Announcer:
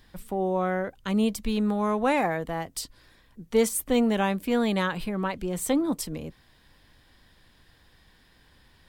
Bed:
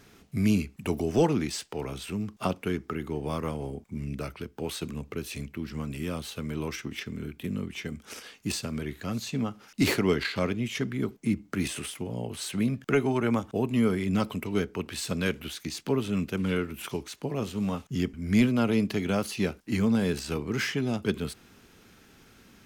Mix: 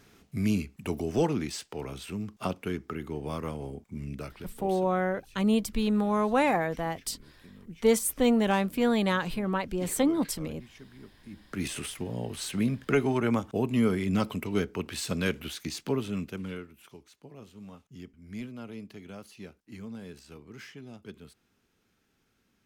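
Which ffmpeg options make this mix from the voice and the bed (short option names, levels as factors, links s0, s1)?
-filter_complex "[0:a]adelay=4300,volume=0.944[s0];[1:a]volume=6.68,afade=t=out:st=4.1:d=0.87:silence=0.141254,afade=t=in:st=11.31:d=0.45:silence=0.105925,afade=t=out:st=15.72:d=1.02:silence=0.149624[s1];[s0][s1]amix=inputs=2:normalize=0"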